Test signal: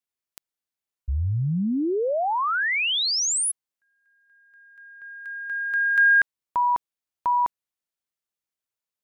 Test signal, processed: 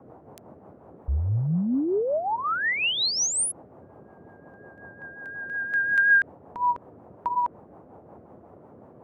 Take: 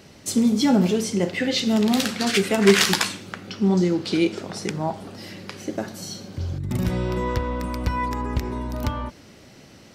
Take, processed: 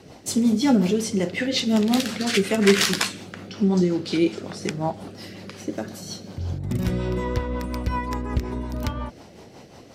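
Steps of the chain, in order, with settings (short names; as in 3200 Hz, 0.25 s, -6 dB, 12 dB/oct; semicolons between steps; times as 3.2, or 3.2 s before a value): band noise 77–850 Hz -48 dBFS; rotary speaker horn 5.5 Hz; gain +1 dB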